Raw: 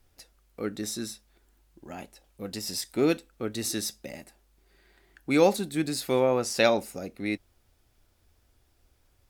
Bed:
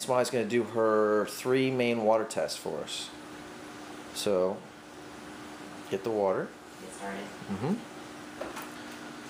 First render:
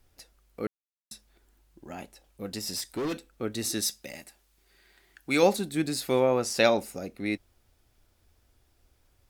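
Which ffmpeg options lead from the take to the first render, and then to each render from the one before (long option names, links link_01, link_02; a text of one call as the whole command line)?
ffmpeg -i in.wav -filter_complex "[0:a]asettb=1/sr,asplit=3[link_01][link_02][link_03];[link_01]atrim=end=2.764[link_04];[link_02]atrim=start=2.76:end=3.3,asetpts=PTS-STARTPTS,afade=type=in:duration=0.004:curve=qsin,afade=type=out:start_time=0.536:duration=0.004:curve=qsin,volume=28dB,asoftclip=hard,volume=-28dB[link_05];[link_03]atrim=start=3.296[link_06];[link_04][link_05]acrossfade=duration=0.004:curve1=hsin:curve2=qsin[link_07];[link_07][link_06]acrossfade=duration=0.004:curve1=qsin:curve2=hsin,asettb=1/sr,asplit=3[link_08][link_09][link_10];[link_08]atrim=end=3.824[link_11];[link_09]atrim=start=3.82:end=5.43,asetpts=PTS-STARTPTS,afade=type=in:duration=0.004:curve=qsin,afade=type=out:start_time=1.606:duration=0.004:curve=qsin,tiltshelf=frequency=1200:gain=-4.5[link_12];[link_10]atrim=start=5.426[link_13];[link_11][link_12]acrossfade=duration=0.004:curve1=hsin:curve2=qsin[link_14];[link_14][link_13]acrossfade=duration=0.004:curve1=qsin:curve2=hsin,asplit=3[link_15][link_16][link_17];[link_15]atrim=end=0.67,asetpts=PTS-STARTPTS,afade=type=out:start_time=0.666:duration=0.004:curve=hsin[link_18];[link_16]atrim=start=0.67:end=1.11,asetpts=PTS-STARTPTS,volume=0[link_19];[link_17]atrim=start=1.11,asetpts=PTS-STARTPTS,afade=type=in:duration=0.004:curve=hsin[link_20];[link_18][link_19][link_20]concat=n=3:v=0:a=1" out.wav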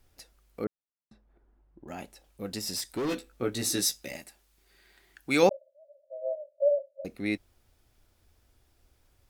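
ffmpeg -i in.wav -filter_complex "[0:a]asettb=1/sr,asplit=3[link_01][link_02][link_03];[link_01]atrim=end=0.644[link_04];[link_02]atrim=start=0.64:end=1.88,asetpts=PTS-STARTPTS,afade=type=in:duration=0.004:curve=qsin,afade=type=out:start_time=1.236:duration=0.004:curve=qsin,lowpass=1100[link_05];[link_03]atrim=start=1.876[link_06];[link_04][link_05]acrossfade=duration=0.004:curve1=hsin:curve2=qsin[link_07];[link_07][link_06]acrossfade=duration=0.004:curve1=qsin:curve2=hsin,asettb=1/sr,asplit=3[link_08][link_09][link_10];[link_08]atrim=end=3.074[link_11];[link_09]atrim=start=3.07:end=4.17,asetpts=PTS-STARTPTS,afade=type=in:duration=0.004:curve=qsin,afade=type=out:start_time=1.096:duration=0.004:curve=qsin,asplit=2[link_12][link_13];[link_13]adelay=16,volume=-3dB[link_14];[link_12][link_14]amix=inputs=2:normalize=0,atrim=end_sample=48510[link_15];[link_10]atrim=start=4.166[link_16];[link_11][link_15]acrossfade=duration=0.004:curve1=hsin:curve2=qsin[link_17];[link_17][link_16]acrossfade=duration=0.004:curve1=qsin:curve2=hsin,asettb=1/sr,asplit=3[link_18][link_19][link_20];[link_18]atrim=end=5.494[link_21];[link_19]atrim=start=5.49:end=7.05,asetpts=PTS-STARTPTS,afade=type=in:duration=0.004:curve=qsin,afade=type=out:start_time=1.556:duration=0.004:curve=qsin,asuperpass=centerf=590:order=20:qfactor=4.6[link_22];[link_20]atrim=start=7.046[link_23];[link_21][link_22]acrossfade=duration=0.004:curve1=hsin:curve2=qsin[link_24];[link_24][link_23]acrossfade=duration=0.004:curve1=qsin:curve2=hsin" out.wav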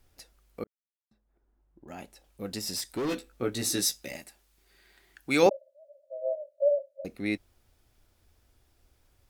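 ffmpeg -i in.wav -filter_complex "[0:a]asettb=1/sr,asplit=3[link_01][link_02][link_03];[link_01]atrim=end=5.464[link_04];[link_02]atrim=start=5.46:end=6.51,asetpts=PTS-STARTPTS,afade=type=in:duration=0.004:curve=qsin,afade=type=out:start_time=1.046:duration=0.004:curve=qsin,highpass=frequency=290:width_type=q:width=1.6[link_05];[link_03]atrim=start=6.506[link_06];[link_04][link_05]acrossfade=duration=0.004:curve1=hsin:curve2=qsin[link_07];[link_07][link_06]acrossfade=duration=0.004:curve1=qsin:curve2=hsin,asplit=2[link_08][link_09];[link_08]atrim=end=0.64,asetpts=PTS-STARTPTS,afade=type=out:start_time=0.636:duration=0.004:curve=hsin[link_10];[link_09]atrim=start=0.64,asetpts=PTS-STARTPTS,afade=type=in:duration=1.77[link_11];[link_10][link_11]concat=n=2:v=0:a=1" out.wav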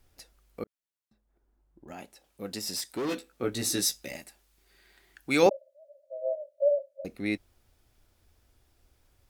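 ffmpeg -i in.wav -filter_complex "[0:a]asettb=1/sr,asplit=3[link_01][link_02][link_03];[link_01]atrim=end=1.934[link_04];[link_02]atrim=start=1.93:end=3.44,asetpts=PTS-STARTPTS,afade=type=in:duration=0.004:curve=qsin,afade=type=out:start_time=1.506:duration=0.004:curve=qsin,highpass=frequency=160:poles=1[link_05];[link_03]atrim=start=3.436[link_06];[link_04][link_05]acrossfade=duration=0.004:curve1=hsin:curve2=qsin[link_07];[link_07][link_06]acrossfade=duration=0.004:curve1=qsin:curve2=hsin" out.wav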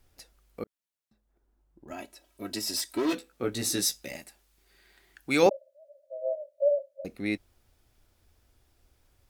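ffmpeg -i in.wav -filter_complex "[0:a]asettb=1/sr,asplit=3[link_01][link_02][link_03];[link_01]atrim=end=1.904[link_04];[link_02]atrim=start=1.9:end=3.13,asetpts=PTS-STARTPTS,afade=type=in:duration=0.004:curve=qsin,afade=type=out:start_time=1.226:duration=0.004:curve=qsin,aecho=1:1:3.1:0.97,atrim=end_sample=54243[link_05];[link_03]atrim=start=3.126[link_06];[link_04][link_05]acrossfade=duration=0.004:curve1=hsin:curve2=qsin[link_07];[link_07][link_06]acrossfade=duration=0.004:curve1=qsin:curve2=hsin" out.wav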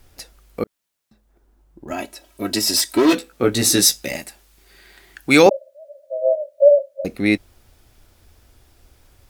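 ffmpeg -i in.wav -af "alimiter=level_in=13dB:limit=-1dB:release=50:level=0:latency=1" out.wav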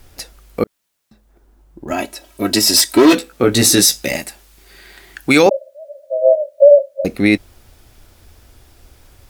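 ffmpeg -i in.wav -af "alimiter=level_in=6.5dB:limit=-1dB:release=50:level=0:latency=1" out.wav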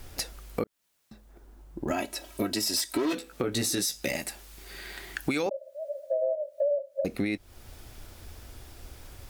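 ffmpeg -i in.wav -af "alimiter=limit=-10.5dB:level=0:latency=1:release=422,acompressor=threshold=-28dB:ratio=3" out.wav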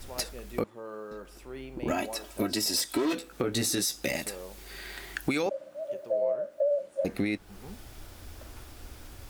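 ffmpeg -i in.wav -i bed.wav -filter_complex "[1:a]volume=-16dB[link_01];[0:a][link_01]amix=inputs=2:normalize=0" out.wav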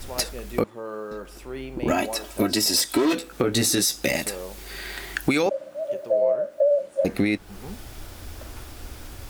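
ffmpeg -i in.wav -af "volume=7dB" out.wav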